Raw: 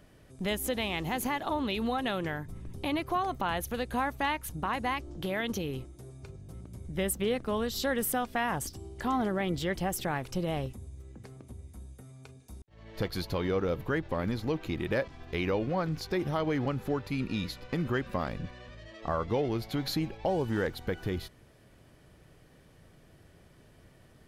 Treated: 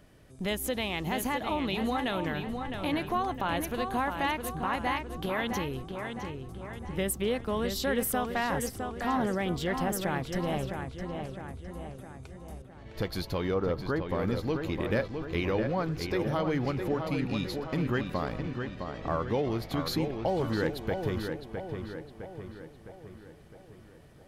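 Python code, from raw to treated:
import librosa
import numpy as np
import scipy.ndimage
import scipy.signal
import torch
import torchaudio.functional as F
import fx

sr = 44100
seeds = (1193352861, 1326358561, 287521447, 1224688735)

y = fx.high_shelf_res(x, sr, hz=1600.0, db=-7.5, q=1.5, at=(13.54, 14.09))
y = fx.echo_filtered(y, sr, ms=660, feedback_pct=54, hz=3500.0, wet_db=-6)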